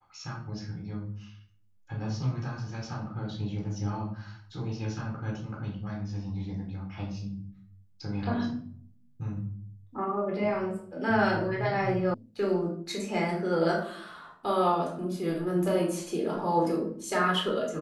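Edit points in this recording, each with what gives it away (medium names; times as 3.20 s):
12.14 s: sound stops dead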